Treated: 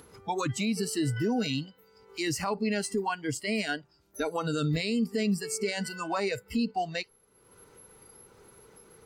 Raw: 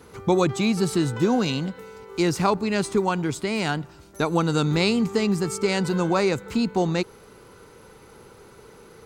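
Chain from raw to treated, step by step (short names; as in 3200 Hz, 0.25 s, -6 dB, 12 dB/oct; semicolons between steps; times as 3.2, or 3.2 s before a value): spectral noise reduction 21 dB; upward compressor, threshold -42 dBFS; limiter -20.5 dBFS, peak gain reduction 11.5 dB; Vorbis 96 kbps 48000 Hz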